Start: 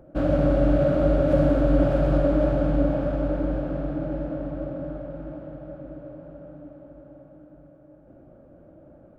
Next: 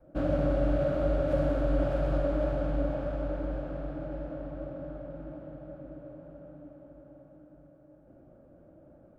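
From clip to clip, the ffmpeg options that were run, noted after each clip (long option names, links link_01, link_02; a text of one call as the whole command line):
ffmpeg -i in.wav -af "adynamicequalizer=threshold=0.0158:dfrequency=220:dqfactor=0.79:tfrequency=220:tqfactor=0.79:attack=5:release=100:ratio=0.375:range=3:mode=cutabove:tftype=bell,volume=-5.5dB" out.wav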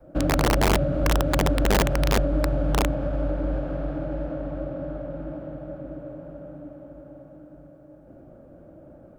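ffmpeg -i in.wav -filter_complex "[0:a]acrossover=split=330[link_01][link_02];[link_02]acompressor=threshold=-38dB:ratio=4[link_03];[link_01][link_03]amix=inputs=2:normalize=0,aeval=exprs='(mod(11.9*val(0)+1,2)-1)/11.9':channel_layout=same,volume=8dB" out.wav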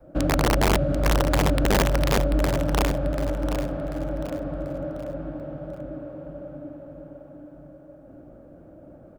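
ffmpeg -i in.wav -af "aecho=1:1:739|1478|2217|2956:0.355|0.135|0.0512|0.0195" out.wav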